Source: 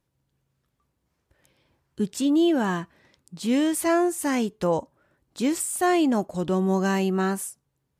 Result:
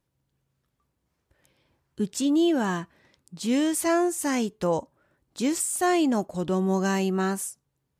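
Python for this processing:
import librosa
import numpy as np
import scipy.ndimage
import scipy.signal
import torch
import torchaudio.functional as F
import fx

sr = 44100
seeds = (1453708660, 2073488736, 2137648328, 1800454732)

y = fx.dynamic_eq(x, sr, hz=6300.0, q=1.3, threshold_db=-47.0, ratio=4.0, max_db=5)
y = y * librosa.db_to_amplitude(-1.5)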